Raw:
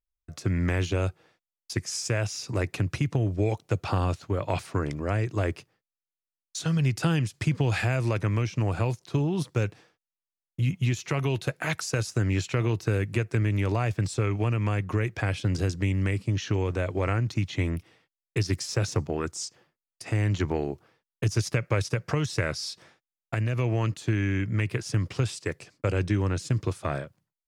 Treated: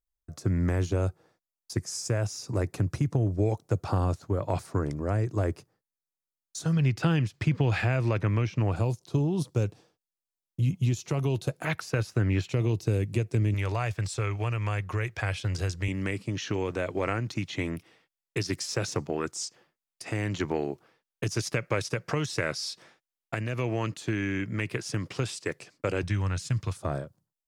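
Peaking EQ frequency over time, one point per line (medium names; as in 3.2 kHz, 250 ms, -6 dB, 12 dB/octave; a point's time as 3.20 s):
peaking EQ -11.5 dB 1.4 oct
2.7 kHz
from 6.73 s 9.6 kHz
from 8.76 s 1.9 kHz
from 11.65 s 7.5 kHz
from 12.49 s 1.5 kHz
from 13.54 s 240 Hz
from 15.88 s 74 Hz
from 26.03 s 360 Hz
from 26.77 s 2.3 kHz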